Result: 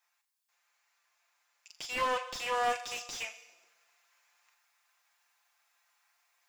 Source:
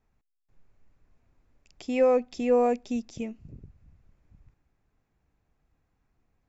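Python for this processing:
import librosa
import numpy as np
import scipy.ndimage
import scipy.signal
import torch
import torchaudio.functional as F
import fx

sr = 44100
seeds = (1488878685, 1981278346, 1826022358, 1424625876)

p1 = fx.self_delay(x, sr, depth_ms=0.17)
p2 = scipy.signal.sosfilt(scipy.signal.butter(4, 840.0, 'highpass', fs=sr, output='sos'), p1)
p3 = fx.high_shelf(p2, sr, hz=2300.0, db=12.0)
p4 = p3 + 0.61 * np.pad(p3, (int(5.8 * sr / 1000.0), 0))[:len(p3)]
p5 = fx.room_flutter(p4, sr, wall_m=7.1, rt60_s=0.22)
p6 = fx.rider(p5, sr, range_db=10, speed_s=0.5)
p7 = p5 + (p6 * 10.0 ** (-1.0 / 20.0))
p8 = fx.rev_plate(p7, sr, seeds[0], rt60_s=1.3, hf_ratio=0.75, predelay_ms=0, drr_db=11.0)
p9 = fx.slew_limit(p8, sr, full_power_hz=100.0)
y = p9 * 10.0 ** (-5.0 / 20.0)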